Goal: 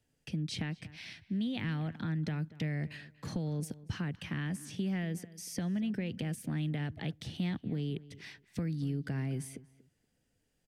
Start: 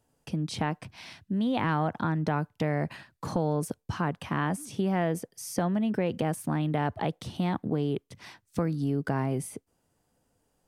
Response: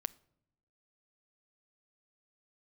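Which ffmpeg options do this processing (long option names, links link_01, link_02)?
-filter_complex "[0:a]firequalizer=gain_entry='entry(150,0);entry(1000,-12);entry(1800,4);entry(10000,-4)':delay=0.05:min_phase=1,acrossover=split=260|3000[link_01][link_02][link_03];[link_02]acompressor=threshold=-41dB:ratio=2.5[link_04];[link_01][link_04][link_03]amix=inputs=3:normalize=0,asplit=2[link_05][link_06];[link_06]adelay=237,lowpass=frequency=2500:poles=1,volume=-18dB,asplit=2[link_07][link_08];[link_08]adelay=237,lowpass=frequency=2500:poles=1,volume=0.22[link_09];[link_07][link_09]amix=inputs=2:normalize=0[link_10];[link_05][link_10]amix=inputs=2:normalize=0,volume=-3.5dB"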